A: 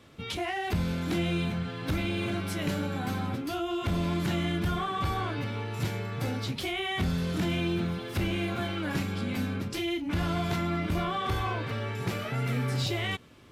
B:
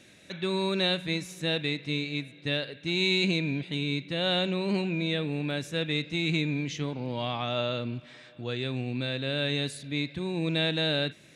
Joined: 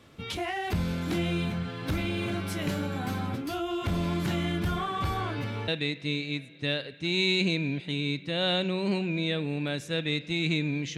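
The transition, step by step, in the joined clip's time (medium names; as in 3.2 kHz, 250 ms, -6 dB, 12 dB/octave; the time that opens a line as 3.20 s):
A
5.68 s: go over to B from 1.51 s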